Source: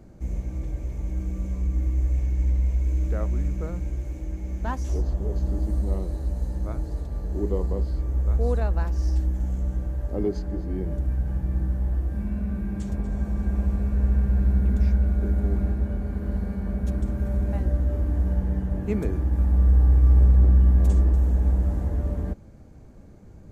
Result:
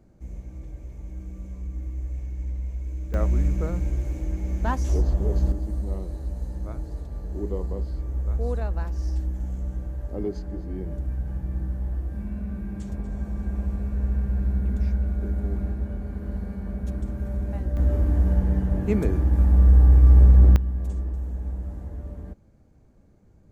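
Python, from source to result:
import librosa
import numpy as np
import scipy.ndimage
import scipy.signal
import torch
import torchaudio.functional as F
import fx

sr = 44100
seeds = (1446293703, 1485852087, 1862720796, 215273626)

y = fx.gain(x, sr, db=fx.steps((0.0, -8.0), (3.14, 3.5), (5.52, -3.5), (17.77, 3.0), (20.56, -9.5)))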